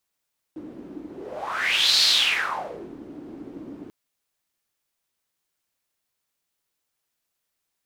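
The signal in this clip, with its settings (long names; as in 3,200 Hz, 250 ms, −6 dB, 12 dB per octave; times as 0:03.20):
pass-by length 3.34 s, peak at 0:01.45, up 0.98 s, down 0.99 s, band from 300 Hz, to 4,300 Hz, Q 5.8, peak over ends 21 dB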